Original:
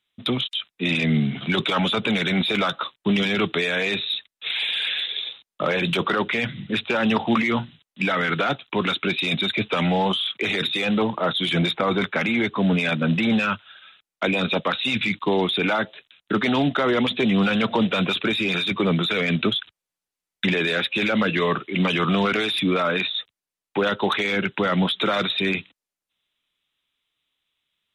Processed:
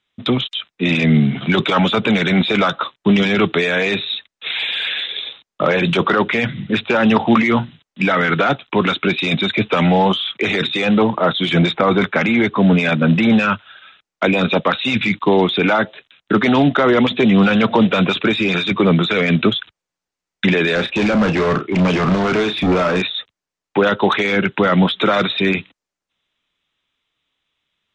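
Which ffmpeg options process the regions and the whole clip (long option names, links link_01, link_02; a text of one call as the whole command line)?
ffmpeg -i in.wav -filter_complex "[0:a]asettb=1/sr,asplit=3[link_01][link_02][link_03];[link_01]atrim=end=20.754[link_04];[link_02]atrim=start=20.75:end=23.02,asetpts=PTS-STARTPTS,afade=type=in:duration=0.004:curve=qsin,afade=type=out:start_time=2.266:duration=0.004:curve=qsin,tiltshelf=frequency=1200:gain=4,volume=21dB,asoftclip=hard,volume=-21dB,asplit=2[link_05][link_06];[link_06]adelay=33,volume=-9dB[link_07];[link_05][link_07]amix=inputs=2:normalize=0,atrim=end_sample=100107[link_08];[link_03]atrim=start=23.016[link_09];[link_04][link_08]acrossfade=duration=0.004:curve1=hsin:curve2=qsin[link_10];[link_10][link_09]acrossfade=duration=0.004:curve1=qsin:curve2=hsin,lowpass=frequency=7000:width=0.5412,lowpass=frequency=7000:width=1.3066,equalizer=frequency=3500:width=1:gain=-5,volume=7.5dB" out.wav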